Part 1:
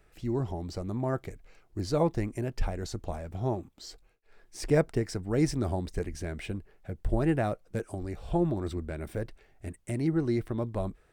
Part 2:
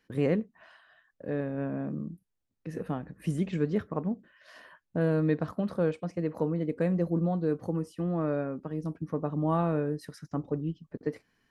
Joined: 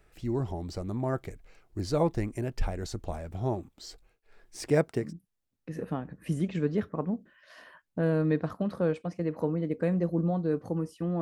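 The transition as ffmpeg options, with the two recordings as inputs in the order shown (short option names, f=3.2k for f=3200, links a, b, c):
-filter_complex "[0:a]asettb=1/sr,asplit=3[a][b][c];[a]atrim=end=4.634[d];[b]atrim=start=4.63:end=5.13,asetpts=PTS-STARTPTS,afade=t=in:d=0.004:c=qsin,afade=t=out:st=0.496:d=0.004:c=qsin,highpass=120[e];[c]atrim=start=5.126[f];[d][e]acrossfade=d=0.004:c1=hsin:c2=qsin[g];[g][f]acrossfade=d=0.004:c1=qsin:c2=hsin,apad=whole_dur=11.21,atrim=end=11.21,atrim=end=5.13,asetpts=PTS-STARTPTS[h];[1:a]atrim=start=1.95:end=8.19,asetpts=PTS-STARTPTS[i];[h][i]acrossfade=d=0.16:c1=tri:c2=tri"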